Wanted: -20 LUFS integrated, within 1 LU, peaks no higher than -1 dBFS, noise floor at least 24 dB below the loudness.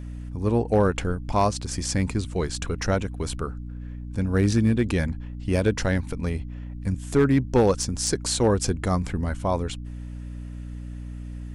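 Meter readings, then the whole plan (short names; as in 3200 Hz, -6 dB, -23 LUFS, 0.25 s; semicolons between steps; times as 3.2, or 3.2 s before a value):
clipped 0.3%; flat tops at -12.0 dBFS; hum 60 Hz; harmonics up to 300 Hz; hum level -33 dBFS; loudness -25.0 LUFS; peak -12.0 dBFS; loudness target -20.0 LUFS
-> clip repair -12 dBFS; de-hum 60 Hz, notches 5; gain +5 dB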